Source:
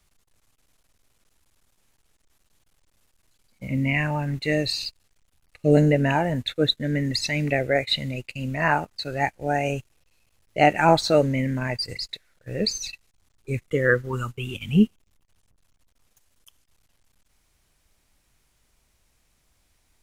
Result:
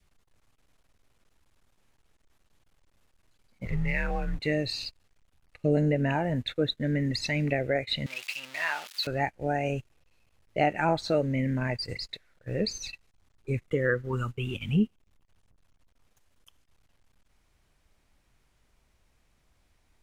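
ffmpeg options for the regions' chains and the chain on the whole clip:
ffmpeg -i in.wav -filter_complex "[0:a]asettb=1/sr,asplit=3[link_01][link_02][link_03];[link_01]atrim=end=3.654[link_04];[link_02]atrim=start=3.65:end=4.4,asetpts=PTS-STARTPTS,afade=type=in:duration=0.004:curve=qsin,afade=type=out:start_time=0.746:duration=0.004:curve=qsin,aeval=exprs='sgn(val(0))*max(abs(val(0))-0.00668,0)':channel_layout=same,afreqshift=-110[link_05];[link_03]atrim=start=4.396[link_06];[link_04][link_05]acrossfade=duration=0.004:curve1=hsin:curve2=qsin[link_07];[link_07][link_06]acrossfade=duration=0.004:curve1=qsin:curve2=hsin,asettb=1/sr,asplit=3[link_08][link_09][link_10];[link_08]atrim=end=8.064[link_11];[link_09]atrim=start=8.06:end=9.07,asetpts=PTS-STARTPTS,afade=type=in:duration=0.004:curve=qsin,afade=type=out:start_time=1.006:duration=0.004:curve=qsin,aeval=exprs='val(0)+0.5*0.0398*sgn(val(0))':channel_layout=same,bandpass=frequency=3300:width_type=q:width=0.97,aemphasis=mode=production:type=bsi[link_12];[link_10]atrim=start=9.066[link_13];[link_11][link_12]acrossfade=duration=0.004:curve1=hsin:curve2=qsin[link_14];[link_14][link_13]acrossfade=duration=0.004:curve1=qsin:curve2=hsin,highshelf=frequency=4500:gain=-11,acompressor=threshold=-26dB:ratio=2,adynamicequalizer=threshold=0.00794:dfrequency=1000:dqfactor=1.6:tfrequency=1000:tqfactor=1.6:attack=5:release=100:ratio=0.375:range=2:mode=cutabove:tftype=bell" out.wav

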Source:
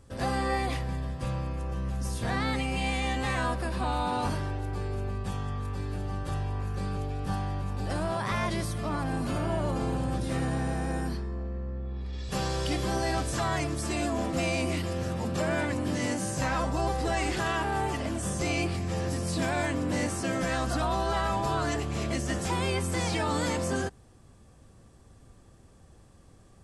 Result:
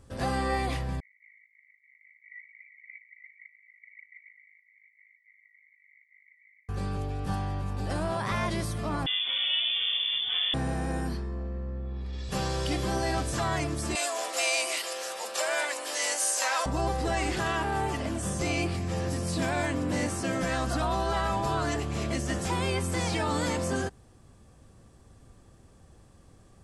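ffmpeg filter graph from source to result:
ffmpeg -i in.wav -filter_complex "[0:a]asettb=1/sr,asplit=3[link_01][link_02][link_03];[link_01]atrim=end=1.004[link_04];[link_02]atrim=start=1:end=6.69,asetpts=PTS-STARTPTS,afade=type=in:duration=0.004:curve=qsin,afade=type=out:start_time=5.686:duration=0.004:curve=qsin,acrusher=samples=25:mix=1:aa=0.000001:lfo=1:lforange=40:lforate=3.5,aeval=exprs='val(0)*sin(2*PI*26*n/s)':channel_layout=same,asuperpass=centerf=2100:order=12:qfactor=5.9[link_05];[link_03]atrim=start=6.686[link_06];[link_04][link_05]acrossfade=duration=0.004:curve1=hsin:curve2=qsin[link_07];[link_07][link_06]acrossfade=duration=0.004:curve1=qsin:curve2=hsin,asettb=1/sr,asplit=3[link_08][link_09][link_10];[link_08]atrim=end=9.064[link_11];[link_09]atrim=start=9.06:end=10.54,asetpts=PTS-STARTPTS,afade=type=in:duration=0.004:curve=qsin,afade=type=out:start_time=1.476:duration=0.004:curve=qsin,aecho=1:1:6.3:0.39,atrim=end_sample=65268,lowpass=frequency=3100:width_type=q:width=0.5098,lowpass=frequency=3100:width_type=q:width=0.6013,lowpass=frequency=3100:width_type=q:width=0.9,lowpass=frequency=3100:width_type=q:width=2.563,afreqshift=-3600[link_12];[link_10]atrim=start=10.536[link_13];[link_11][link_12]acrossfade=duration=0.004:curve1=hsin:curve2=qsin[link_14];[link_14][link_13]acrossfade=duration=0.004:curve1=qsin:curve2=hsin,asettb=1/sr,asplit=3[link_15][link_16][link_17];[link_15]atrim=end=13.954[link_18];[link_16]atrim=start=13.95:end=16.66,asetpts=PTS-STARTPTS,afade=type=in:duration=0.004:curve=qsin,afade=type=out:start_time=2.706:duration=0.004:curve=qsin,highpass=frequency=510:width=0.5412,highpass=frequency=510:width=1.3066,highshelf=frequency=2700:gain=11.5[link_19];[link_17]atrim=start=16.656[link_20];[link_18][link_19]acrossfade=duration=0.004:curve1=hsin:curve2=qsin[link_21];[link_21][link_20]acrossfade=duration=0.004:curve1=qsin:curve2=hsin" out.wav

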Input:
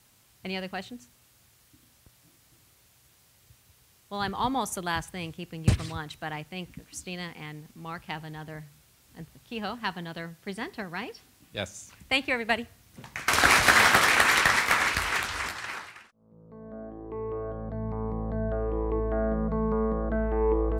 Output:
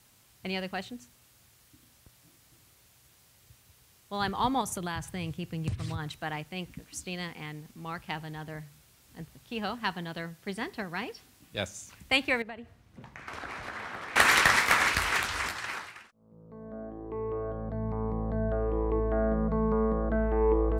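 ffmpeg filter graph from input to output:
ffmpeg -i in.wav -filter_complex "[0:a]asettb=1/sr,asplit=3[link_01][link_02][link_03];[link_01]atrim=end=4.614[link_04];[link_02]atrim=start=4.61:end=6.11,asetpts=PTS-STARTPTS,afade=type=in:duration=0.004:curve=qsin,afade=type=out:start_time=1.496:duration=0.004:curve=qsin,equalizer=frequency=110:width=1.1:gain=9,acompressor=threshold=-30dB:ratio=5:attack=3.2:release=140:knee=1:detection=peak[link_05];[link_03]atrim=start=6.106[link_06];[link_04][link_05]acrossfade=duration=0.004:curve1=hsin:curve2=qsin[link_07];[link_07][link_06]acrossfade=duration=0.004:curve1=qsin:curve2=hsin,asettb=1/sr,asplit=3[link_08][link_09][link_10];[link_08]atrim=end=12.424[link_11];[link_09]atrim=start=12.42:end=14.16,asetpts=PTS-STARTPTS,afade=type=in:duration=0.004:curve=qsin,afade=type=out:start_time=1.736:duration=0.004:curve=qsin,lowpass=frequency=1400:poles=1,acompressor=threshold=-42dB:ratio=3:attack=3.2:release=140:knee=1:detection=peak[link_12];[link_10]atrim=start=14.156[link_13];[link_11][link_12]acrossfade=duration=0.004:curve1=hsin:curve2=qsin[link_14];[link_14][link_13]acrossfade=duration=0.004:curve1=qsin:curve2=hsin" out.wav

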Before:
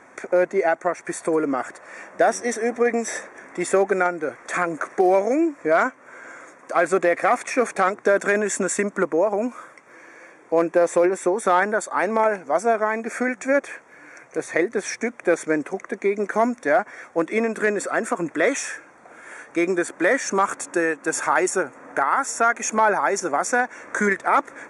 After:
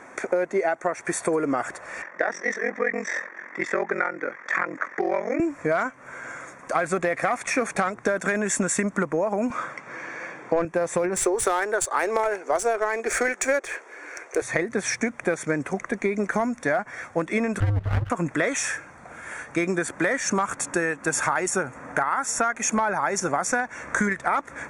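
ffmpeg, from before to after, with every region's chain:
ffmpeg -i in.wav -filter_complex "[0:a]asettb=1/sr,asplit=3[link_01][link_02][link_03];[link_01]atrim=end=2.024[link_04];[link_02]atrim=start=2.02:end=5.4,asetpts=PTS-STARTPTS,afade=type=in:duration=0.004:curve=qsin,afade=type=out:start_time=3.376:duration=0.004:curve=qsin,aeval=exprs='val(0)*sin(2*PI*22*n/s)':channel_layout=same,highpass=frequency=230:width=0.5412,highpass=frequency=230:width=1.3066,equalizer=frequency=250:width_type=q:width=4:gain=-5,equalizer=frequency=420:width_type=q:width=4:gain=-4,equalizer=frequency=710:width_type=q:width=4:gain=-7,equalizer=frequency=1900:width_type=q:width=4:gain=8,equalizer=frequency=2900:width_type=q:width=4:gain=-7,equalizer=frequency=4100:width_type=q:width=4:gain=-8,lowpass=frequency=5100:width=0.5412,lowpass=frequency=5100:width=1.3066[link_05];[link_03]atrim=start=5.396[link_06];[link_04][link_05]acrossfade=duration=0.004:curve1=hsin:curve2=qsin[link_07];[link_07][link_06]acrossfade=duration=0.004:curve1=qsin:curve2=hsin,asettb=1/sr,asplit=3[link_08][link_09][link_10];[link_08]atrim=end=9.504[link_11];[link_09]atrim=start=9.5:end=10.65,asetpts=PTS-STARTPTS,afade=type=in:duration=0.004:curve=qsin,afade=type=out:start_time=1.146:duration=0.004:curve=qsin,highpass=160,lowpass=5400,acontrast=65[link_12];[link_10]atrim=start=10.646[link_13];[link_11][link_12]acrossfade=duration=0.004:curve1=hsin:curve2=qsin[link_14];[link_14][link_13]acrossfade=duration=0.004:curve1=qsin:curve2=hsin,asettb=1/sr,asplit=3[link_15][link_16][link_17];[link_15]atrim=end=11.164[link_18];[link_16]atrim=start=11.16:end=14.42,asetpts=PTS-STARTPTS,afade=type=in:duration=0.004:curve=qsin,afade=type=out:start_time=3.256:duration=0.004:curve=qsin,highpass=frequency=380:width_type=q:width=4.2,aemphasis=mode=production:type=riaa,adynamicsmooth=sensitivity=3:basefreq=4600[link_19];[link_17]atrim=start=14.416[link_20];[link_18][link_19]acrossfade=duration=0.004:curve1=hsin:curve2=qsin[link_21];[link_21][link_20]acrossfade=duration=0.004:curve1=qsin:curve2=hsin,asettb=1/sr,asplit=3[link_22][link_23][link_24];[link_22]atrim=end=17.604[link_25];[link_23]atrim=start=17.6:end=18.1,asetpts=PTS-STARTPTS,afade=type=in:duration=0.004:curve=qsin,afade=type=out:start_time=0.496:duration=0.004:curve=qsin,lowpass=frequency=1500:width=0.5412,lowpass=frequency=1500:width=1.3066,aeval=exprs='max(val(0),0)':channel_layout=same,aeval=exprs='val(0)*sin(2*PI*100*n/s)':channel_layout=same[link_26];[link_24]atrim=start=18.096[link_27];[link_25][link_26]acrossfade=duration=0.004:curve1=hsin:curve2=qsin[link_28];[link_28][link_27]acrossfade=duration=0.004:curve1=qsin:curve2=hsin,asubboost=boost=7.5:cutoff=120,acompressor=threshold=-24dB:ratio=6,volume=4dB" out.wav

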